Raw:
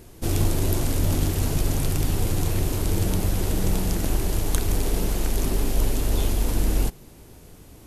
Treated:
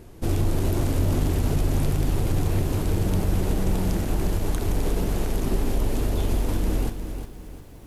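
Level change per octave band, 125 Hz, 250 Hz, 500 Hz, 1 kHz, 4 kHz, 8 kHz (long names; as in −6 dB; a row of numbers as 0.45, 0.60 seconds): +0.5, +1.0, +1.0, 0.0, −4.5, −7.0 decibels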